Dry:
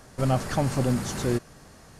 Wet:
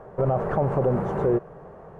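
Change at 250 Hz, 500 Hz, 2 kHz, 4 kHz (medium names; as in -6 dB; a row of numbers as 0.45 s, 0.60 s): -0.5 dB, +6.5 dB, -3.5 dB, under -20 dB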